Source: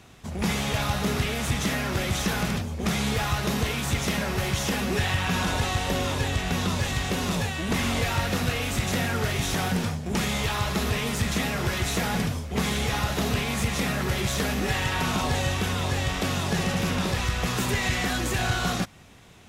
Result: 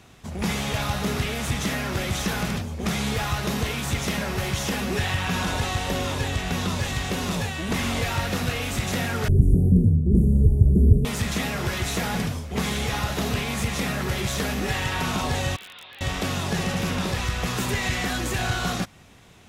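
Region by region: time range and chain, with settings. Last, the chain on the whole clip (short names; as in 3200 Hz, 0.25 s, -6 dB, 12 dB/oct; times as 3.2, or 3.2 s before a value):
9.28–11.05 elliptic band-stop 400–9500 Hz, stop band 60 dB + tilt -4 dB/oct
15.56–16.01 steep low-pass 3700 Hz 48 dB/oct + differentiator + wrapped overs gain 33.5 dB
whole clip: dry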